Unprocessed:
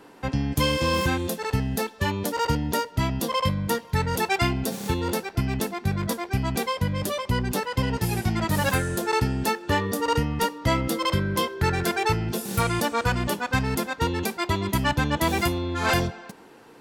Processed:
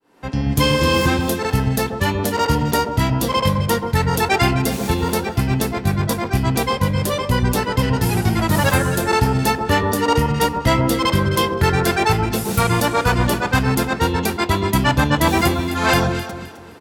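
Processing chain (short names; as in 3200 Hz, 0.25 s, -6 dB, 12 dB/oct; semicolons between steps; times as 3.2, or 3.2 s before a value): opening faded in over 0.51 s; echo with dull and thin repeats by turns 0.13 s, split 1400 Hz, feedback 55%, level -5.5 dB; harmoniser -4 st -16 dB; gain +6 dB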